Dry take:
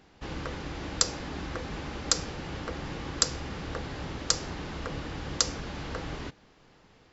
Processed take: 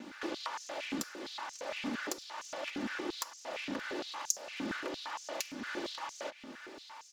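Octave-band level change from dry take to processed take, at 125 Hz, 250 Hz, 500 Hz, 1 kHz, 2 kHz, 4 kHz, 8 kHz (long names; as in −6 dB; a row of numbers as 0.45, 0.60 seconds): −21.0 dB, −2.5 dB, −3.0 dB, −2.5 dB, −1.0 dB, −9.0 dB, can't be measured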